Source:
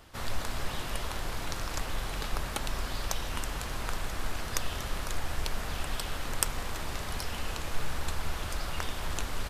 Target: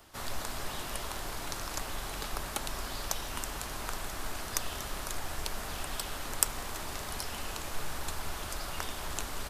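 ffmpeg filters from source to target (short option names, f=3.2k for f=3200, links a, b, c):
-filter_complex "[0:a]highshelf=f=3.9k:g=10.5,bandreject=f=500:w=12,acrossover=split=230|1500|2100[a][b][c][d];[b]acontrast=39[e];[a][e][c][d]amix=inputs=4:normalize=0,volume=-6.5dB"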